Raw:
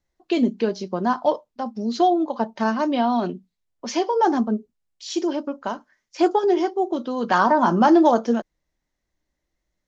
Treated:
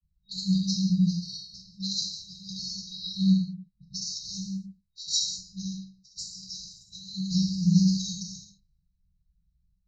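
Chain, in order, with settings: granulator, pitch spread up and down by 0 st; gated-style reverb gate 240 ms falling, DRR -3 dB; level-controlled noise filter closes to 1.4 kHz, open at -17 dBFS; FFT band-reject 200–3800 Hz; trim +7.5 dB

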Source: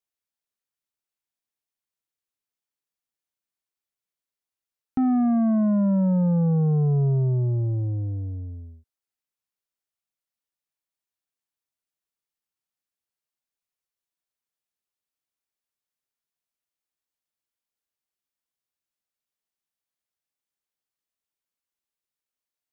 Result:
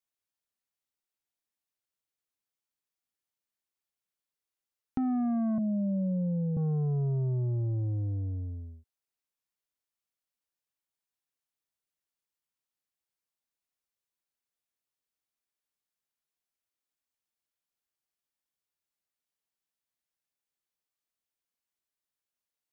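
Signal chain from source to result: 5.58–6.57 s: Chebyshev band-pass 160–590 Hz, order 3; compression 3:1, threshold -28 dBFS, peak gain reduction 7.5 dB; trim -2 dB

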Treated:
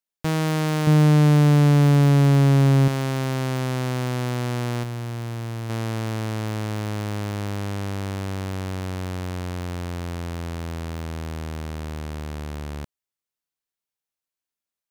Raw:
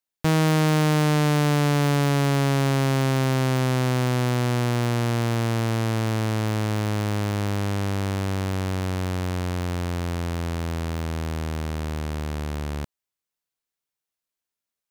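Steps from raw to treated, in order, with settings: 0.87–2.88 s: bass shelf 330 Hz +11.5 dB; 4.83–5.70 s: one-sided clip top -30.5 dBFS, bottom -21.5 dBFS; trim -3 dB

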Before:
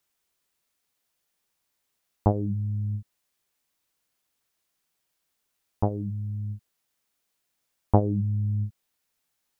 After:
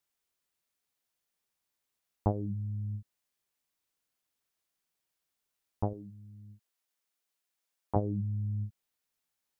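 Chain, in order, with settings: 5.93–7.96 s: high-pass 410 Hz 6 dB/octave; trim -7 dB

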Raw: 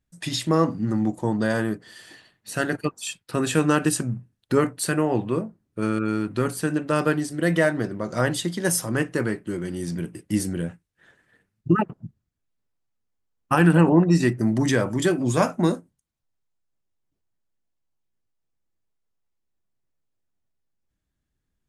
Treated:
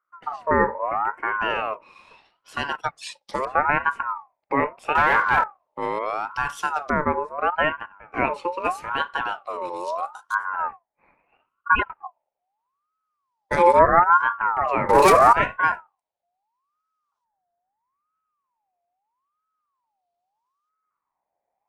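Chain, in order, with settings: LFO low-pass saw up 0.29 Hz 840–4900 Hz; 7.50–8.14 s: gate -21 dBFS, range -16 dB; 14.89–15.33 s: waveshaping leveller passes 5; fifteen-band graphic EQ 160 Hz +7 dB, 2.5 kHz -10 dB, 10 kHz +11 dB; 4.95–5.44 s: waveshaping leveller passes 3; ring modulator with a swept carrier 990 Hz, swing 30%, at 0.77 Hz; trim -1 dB

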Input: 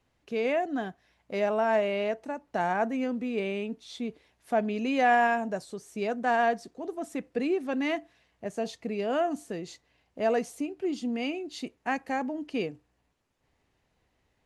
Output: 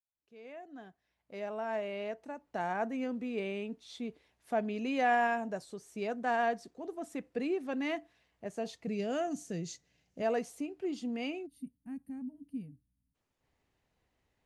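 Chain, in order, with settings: fade-in on the opening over 3.10 s; 8.87–10.22 s: fifteen-band graphic EQ 160 Hz +11 dB, 1 kHz -8 dB, 6.3 kHz +11 dB; 11.46–13.15 s: time-frequency box 290–8500 Hz -26 dB; trim -5.5 dB

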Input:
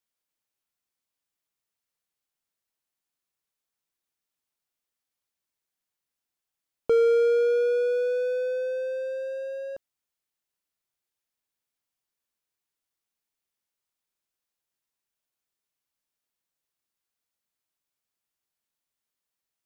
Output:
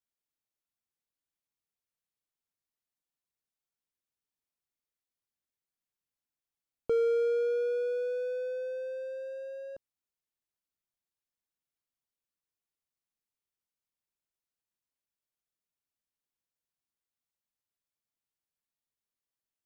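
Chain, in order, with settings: bass shelf 340 Hz +6.5 dB; trim -9 dB

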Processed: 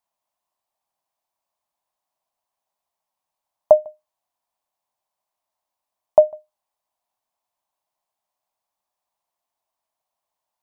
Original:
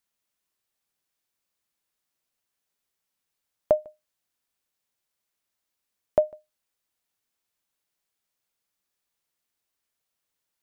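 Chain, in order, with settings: high-order bell 810 Hz +15.5 dB 1.1 oct; trim -4.5 dB

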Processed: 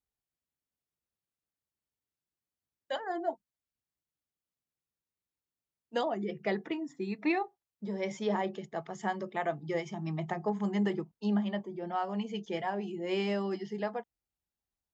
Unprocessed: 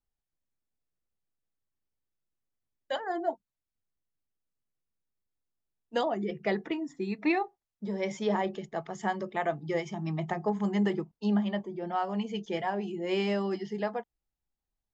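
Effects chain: high-pass 52 Hz; trim -2.5 dB

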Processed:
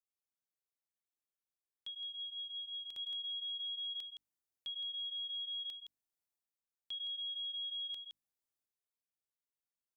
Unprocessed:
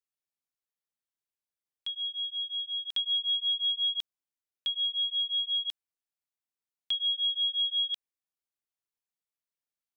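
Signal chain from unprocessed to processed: transient shaper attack -1 dB, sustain +6 dB; on a send: delay 166 ms -9 dB; on the sum: peak limiter -27.5 dBFS, peak gain reduction 7 dB; peaking EQ 2.3 kHz -5.5 dB 2.6 oct; hum notches 50/100/150/200/250/300 Hz; trim -5 dB

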